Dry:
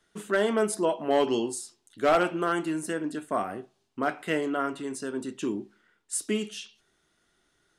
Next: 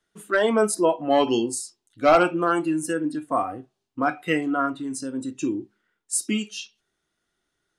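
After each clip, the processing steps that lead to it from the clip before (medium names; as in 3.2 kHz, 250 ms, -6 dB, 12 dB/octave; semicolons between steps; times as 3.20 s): spectral noise reduction 13 dB; trim +6 dB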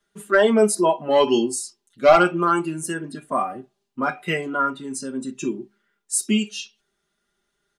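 comb 5 ms, depth 92%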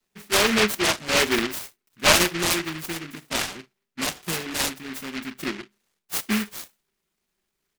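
delay time shaken by noise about 1.9 kHz, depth 0.34 ms; trim -4 dB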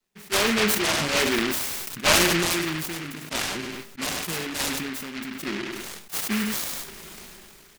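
feedback delay 99 ms, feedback 16%, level -19 dB; decay stretcher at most 22 dB/s; trim -3 dB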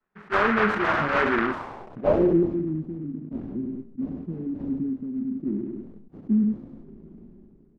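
low-pass sweep 1.4 kHz -> 260 Hz, 1.42–2.62 s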